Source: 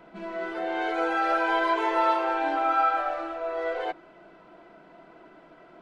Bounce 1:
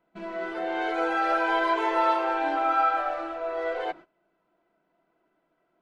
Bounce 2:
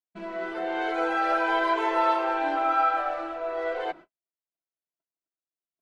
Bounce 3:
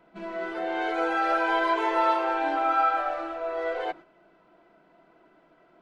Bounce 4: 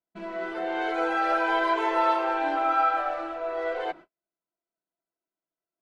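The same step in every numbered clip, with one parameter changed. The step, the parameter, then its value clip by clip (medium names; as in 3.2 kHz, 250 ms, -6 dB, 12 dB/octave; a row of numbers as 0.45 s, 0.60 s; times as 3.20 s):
gate, range: -21 dB, -58 dB, -8 dB, -45 dB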